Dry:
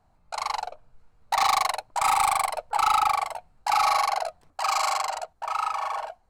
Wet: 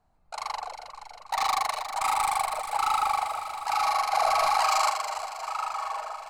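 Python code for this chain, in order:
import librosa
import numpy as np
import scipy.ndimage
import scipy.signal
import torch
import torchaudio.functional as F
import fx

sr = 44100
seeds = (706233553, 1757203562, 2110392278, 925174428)

p1 = fx.peak_eq(x, sr, hz=110.0, db=-5.0, octaves=0.44)
p2 = p1 + fx.echo_alternate(p1, sr, ms=159, hz=1800.0, feedback_pct=81, wet_db=-6.5, dry=0)
p3 = fx.env_flatten(p2, sr, amount_pct=100, at=(4.12, 4.89), fade=0.02)
y = p3 * librosa.db_to_amplitude(-4.5)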